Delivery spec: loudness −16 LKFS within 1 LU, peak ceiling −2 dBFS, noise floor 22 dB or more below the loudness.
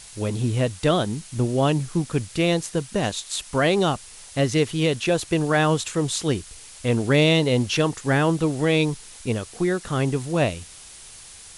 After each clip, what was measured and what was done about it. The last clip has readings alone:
background noise floor −44 dBFS; target noise floor −45 dBFS; integrated loudness −23.0 LKFS; sample peak −7.5 dBFS; target loudness −16.0 LKFS
→ broadband denoise 6 dB, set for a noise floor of −44 dBFS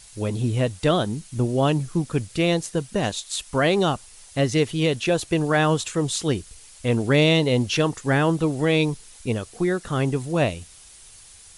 background noise floor −48 dBFS; integrated loudness −23.0 LKFS; sample peak −7.5 dBFS; target loudness −16.0 LKFS
→ level +7 dB
brickwall limiter −2 dBFS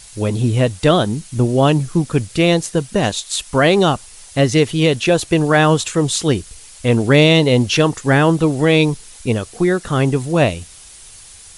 integrated loudness −16.0 LKFS; sample peak −2.0 dBFS; background noise floor −41 dBFS

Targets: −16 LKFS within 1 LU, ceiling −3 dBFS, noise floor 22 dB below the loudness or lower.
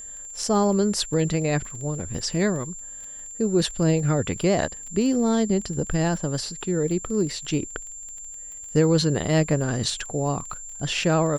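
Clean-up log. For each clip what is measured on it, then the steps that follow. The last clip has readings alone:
crackle rate 23 per second; interfering tone 7,300 Hz; level of the tone −36 dBFS; integrated loudness −24.0 LKFS; sample peak −8.0 dBFS; target loudness −16.0 LKFS
→ click removal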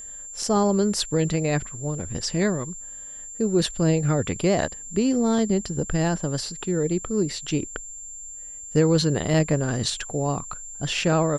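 crackle rate 0 per second; interfering tone 7,300 Hz; level of the tone −36 dBFS
→ notch filter 7,300 Hz, Q 30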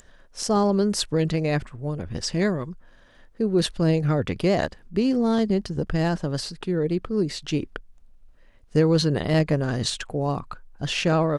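interfering tone none found; integrated loudness −24.5 LKFS; sample peak −8.0 dBFS; target loudness −16.0 LKFS
→ level +8.5 dB
brickwall limiter −3 dBFS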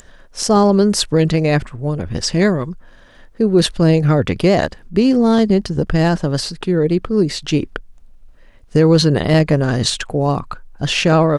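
integrated loudness −16.0 LKFS; sample peak −3.0 dBFS; background noise floor −44 dBFS

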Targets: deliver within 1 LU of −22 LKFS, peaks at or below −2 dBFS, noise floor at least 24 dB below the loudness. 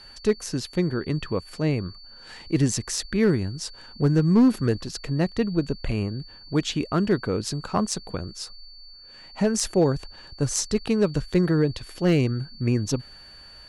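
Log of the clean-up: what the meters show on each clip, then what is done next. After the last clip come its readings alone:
share of clipped samples 0.4%; peaks flattened at −12.0 dBFS; interfering tone 4,500 Hz; level of the tone −45 dBFS; integrated loudness −25.0 LKFS; sample peak −12.0 dBFS; target loudness −22.0 LKFS
→ clipped peaks rebuilt −12 dBFS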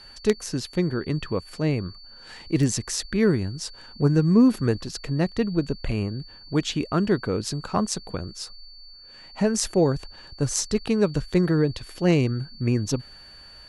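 share of clipped samples 0.0%; interfering tone 4,500 Hz; level of the tone −45 dBFS
→ notch filter 4,500 Hz, Q 30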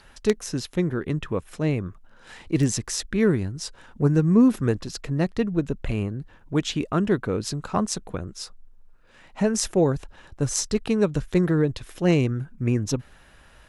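interfering tone none found; integrated loudness −24.5 LKFS; sample peak −3.0 dBFS; target loudness −22.0 LKFS
→ level +2.5 dB
brickwall limiter −2 dBFS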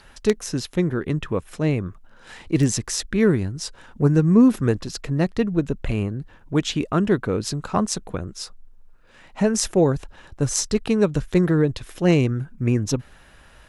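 integrated loudness −22.0 LKFS; sample peak −2.0 dBFS; background noise floor −50 dBFS

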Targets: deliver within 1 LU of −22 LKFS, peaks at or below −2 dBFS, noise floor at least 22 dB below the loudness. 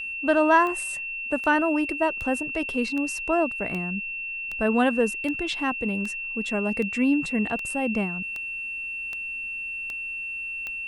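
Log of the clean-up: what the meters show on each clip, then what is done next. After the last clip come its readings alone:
number of clicks 14; interfering tone 2,700 Hz; level of the tone −30 dBFS; integrated loudness −25.5 LKFS; sample peak −7.5 dBFS; target loudness −22.0 LKFS
→ click removal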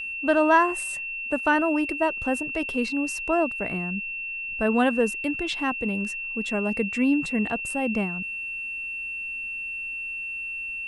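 number of clicks 0; interfering tone 2,700 Hz; level of the tone −30 dBFS
→ notch filter 2,700 Hz, Q 30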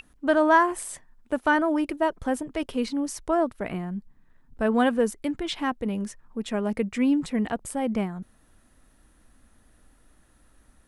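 interfering tone none found; integrated loudness −26.0 LKFS; sample peak −8.0 dBFS; target loudness −22.0 LKFS
→ level +4 dB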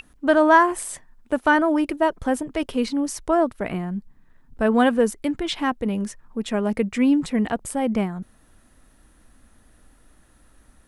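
integrated loudness −22.0 LKFS; sample peak −4.0 dBFS; background noise floor −56 dBFS

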